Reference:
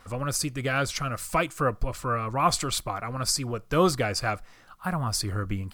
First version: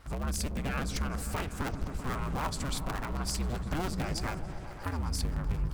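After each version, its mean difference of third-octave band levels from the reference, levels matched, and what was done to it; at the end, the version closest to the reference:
10.0 dB: sub-harmonics by changed cycles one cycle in 2, inverted
low-shelf EQ 96 Hz +12 dB
downward compressor, threshold −26 dBFS, peak gain reduction 14.5 dB
on a send: echo whose low-pass opens from repeat to repeat 129 ms, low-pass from 200 Hz, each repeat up 1 octave, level −3 dB
on the sum: level −5 dB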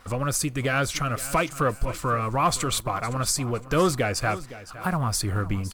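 4.0 dB: dynamic equaliser 4,900 Hz, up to −6 dB, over −44 dBFS, Q 3.7
leveller curve on the samples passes 1
in parallel at +3 dB: downward compressor, threshold −30 dBFS, peak gain reduction 14.5 dB
on the sum: repeating echo 512 ms, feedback 30%, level −16 dB
level −4.5 dB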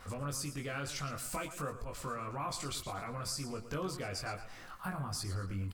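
7.0 dB: transient designer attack −4 dB, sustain +3 dB
downward compressor 6 to 1, threshold −39 dBFS, peak gain reduction 20 dB
double-tracking delay 21 ms −3 dB
feedback echo with a swinging delay time 114 ms, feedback 37%, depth 98 cents, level −12 dB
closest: second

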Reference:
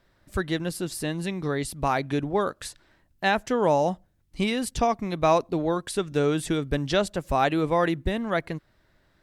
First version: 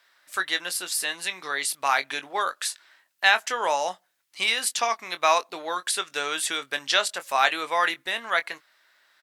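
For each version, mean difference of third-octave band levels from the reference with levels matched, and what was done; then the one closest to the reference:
10.5 dB: high-pass filter 1,300 Hz 12 dB per octave
double-tracking delay 22 ms −11 dB
level +8.5 dB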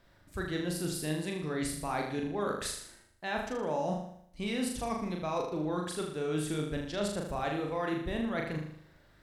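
7.5 dB: reversed playback
downward compressor 6 to 1, threshold −33 dBFS, peak gain reduction 16.5 dB
reversed playback
flutter between parallel walls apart 6.7 metres, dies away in 0.67 s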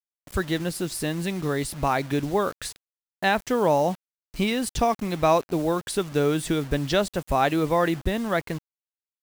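4.5 dB: in parallel at −2 dB: downward compressor 16 to 1, threshold −36 dBFS, peak gain reduction 21 dB
on the sum: bit reduction 7 bits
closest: third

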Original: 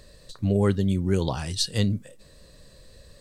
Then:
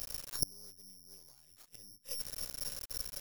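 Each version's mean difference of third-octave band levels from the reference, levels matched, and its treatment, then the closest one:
19.5 dB: half-wave rectification
gate with flip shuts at −27 dBFS, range −37 dB
bad sample-rate conversion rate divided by 8×, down none, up zero stuff
level +1 dB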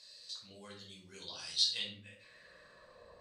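9.0 dB: downward compressor 2 to 1, threshold −35 dBFS, peak gain reduction 10.5 dB
band-pass filter sweep 4,700 Hz → 860 Hz, 0:01.43–0:03.14
rectangular room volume 550 cubic metres, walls furnished, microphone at 5.2 metres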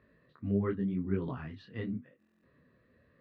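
6.5 dB: loudspeaker in its box 120–2,200 Hz, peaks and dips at 250 Hz +8 dB, 560 Hz −7 dB, 820 Hz −7 dB, 1,200 Hz +4 dB, 1,900 Hz +3 dB
buffer that repeats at 0:02.18, samples 1,024, times 10
micro pitch shift up and down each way 31 cents
level −6 dB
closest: third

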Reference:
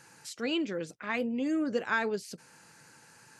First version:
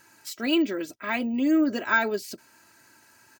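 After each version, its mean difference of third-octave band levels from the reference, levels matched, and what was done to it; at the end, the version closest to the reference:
5.0 dB: comb filter 3.1 ms, depth 75%
noise gate −45 dBFS, range −6 dB
bad sample-rate conversion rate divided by 2×, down none, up hold
level +4 dB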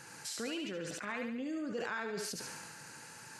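9.5 dB: downward compressor 4 to 1, threshold −44 dBFS, peak gain reduction 16.5 dB
feedback echo with a high-pass in the loop 71 ms, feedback 56%, high-pass 780 Hz, level −3.5 dB
level that may fall only so fast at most 23 dB per second
level +4 dB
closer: first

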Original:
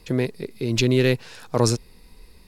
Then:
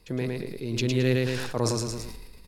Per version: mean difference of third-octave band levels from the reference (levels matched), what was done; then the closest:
9.0 dB: on a send: repeating echo 110 ms, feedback 27%, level −4.5 dB
on the sum: level that may fall only so fast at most 31 dB per second
level −8 dB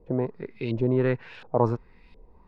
6.5 dB: parametric band 930 Hz +3.5 dB 0.22 octaves
auto-filter low-pass saw up 1.4 Hz 530–3,200 Hz
level −5 dB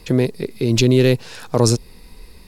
1.5 dB: dynamic equaliser 1,800 Hz, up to −6 dB, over −39 dBFS, Q 0.83
in parallel at −2.5 dB: brickwall limiter −13.5 dBFS, peak gain reduction 8 dB
on the sum: level +2 dB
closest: third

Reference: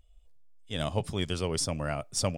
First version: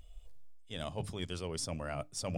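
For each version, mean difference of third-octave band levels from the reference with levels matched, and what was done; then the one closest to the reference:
2.5 dB: mains-hum notches 50/100/150/200/250/300 Hz
reversed playback
downward compressor 10 to 1, threshold −43 dBFS, peak gain reduction 19 dB
reversed playback
level +8 dB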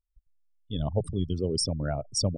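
11.5 dB: spectral envelope exaggerated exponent 3
noise gate −52 dBFS, range −26 dB
level +2.5 dB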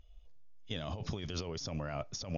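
6.5 dB: compressor whose output falls as the input rises −36 dBFS, ratio −1
level −2.5 dB
AC-3 48 kbit/s 48,000 Hz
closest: first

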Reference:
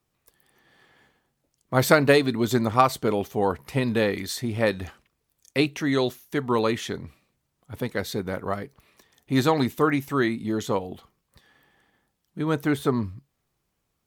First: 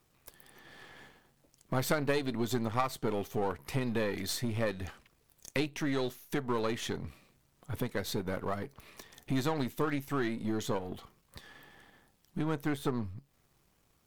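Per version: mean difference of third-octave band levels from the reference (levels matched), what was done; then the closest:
4.0 dB: gain on one half-wave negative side −7 dB
downward compressor 2.5 to 1, threshold −45 dBFS, peak gain reduction 20 dB
level +8.5 dB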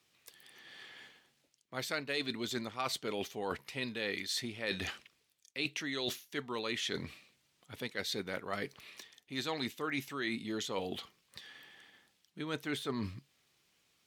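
6.5 dB: meter weighting curve D
reversed playback
downward compressor 6 to 1, threshold −35 dBFS, peak gain reduction 24 dB
reversed playback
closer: first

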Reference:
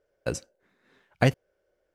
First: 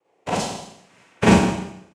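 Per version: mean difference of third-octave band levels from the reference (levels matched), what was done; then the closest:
11.5 dB: cochlear-implant simulation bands 4
on a send: single-tap delay 165 ms −16 dB
on the sum: four-comb reverb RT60 0.77 s, combs from 33 ms, DRR −7.5 dB
level +1 dB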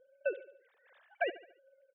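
16.0 dB: three sine waves on the formant tracks
downward compressor 4 to 1, threshold −32 dBFS, peak gain reduction 13 dB
on a send: repeating echo 72 ms, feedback 47%, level −16.5 dB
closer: first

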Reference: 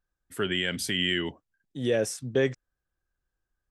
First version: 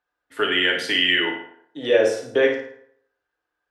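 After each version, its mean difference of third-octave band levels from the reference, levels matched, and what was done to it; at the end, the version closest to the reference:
7.5 dB: high-pass filter 49 Hz
three-way crossover with the lows and the highs turned down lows −21 dB, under 360 Hz, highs −19 dB, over 4,100 Hz
on a send: flutter between parallel walls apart 9.4 metres, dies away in 0.44 s
on the sum: feedback delay network reverb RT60 0.68 s, low-frequency decay 0.85×, high-frequency decay 0.6×, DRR 1 dB
level +8 dB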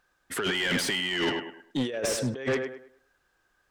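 11.5 dB: de-essing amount 65%
tape delay 102 ms, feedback 32%, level −12 dB, low-pass 2,900 Hz
compressor whose output falls as the input rises −32 dBFS, ratio −0.5
mid-hump overdrive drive 22 dB, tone 3,200 Hz, clips at −17.5 dBFS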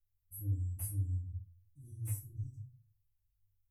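16.5 dB: inverse Chebyshev band-stop filter 480–3,000 Hz, stop band 80 dB
tuned comb filter 100 Hz, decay 0.25 s, harmonics odd, mix 100%
in parallel at −12 dB: sine wavefolder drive 14 dB, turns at −37.5 dBFS
on the sum: rectangular room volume 160 cubic metres, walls furnished, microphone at 1.6 metres
level +6.5 dB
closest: first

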